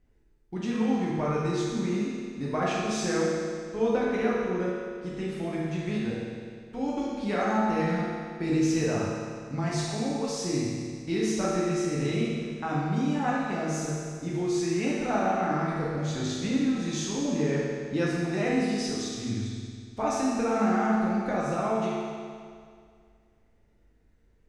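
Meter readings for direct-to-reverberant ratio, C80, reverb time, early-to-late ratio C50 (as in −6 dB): −7.0 dB, 0.0 dB, 2.1 s, −2.5 dB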